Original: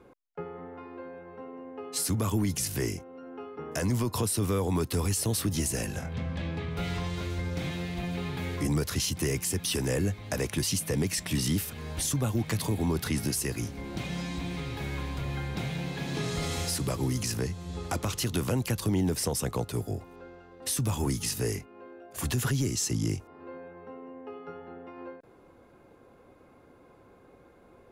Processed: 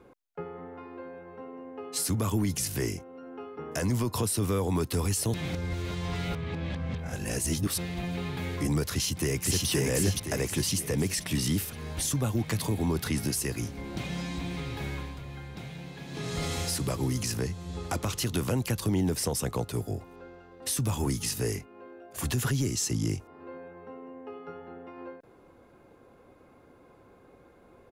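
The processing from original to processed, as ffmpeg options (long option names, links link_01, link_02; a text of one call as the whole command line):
ffmpeg -i in.wav -filter_complex "[0:a]asplit=2[link_01][link_02];[link_02]afade=type=in:start_time=8.93:duration=0.01,afade=type=out:start_time=9.67:duration=0.01,aecho=0:1:520|1040|1560|2080|2600|3120:0.944061|0.424827|0.191172|0.0860275|0.0387124|0.0174206[link_03];[link_01][link_03]amix=inputs=2:normalize=0,asplit=5[link_04][link_05][link_06][link_07][link_08];[link_04]atrim=end=5.342[link_09];[link_05]atrim=start=5.338:end=7.782,asetpts=PTS-STARTPTS,areverse[link_10];[link_06]atrim=start=7.778:end=15.2,asetpts=PTS-STARTPTS,afade=type=out:start_time=7.102:duration=0.32:silence=0.398107[link_11];[link_07]atrim=start=15.2:end=16.09,asetpts=PTS-STARTPTS,volume=-8dB[link_12];[link_08]atrim=start=16.09,asetpts=PTS-STARTPTS,afade=type=in:duration=0.32:silence=0.398107[link_13];[link_09][link_10]acrossfade=duration=0.004:curve1=hsin:curve2=hsin[link_14];[link_11][link_12][link_13]concat=n=3:v=0:a=1[link_15];[link_14][link_15]acrossfade=duration=0.004:curve1=hsin:curve2=hsin" out.wav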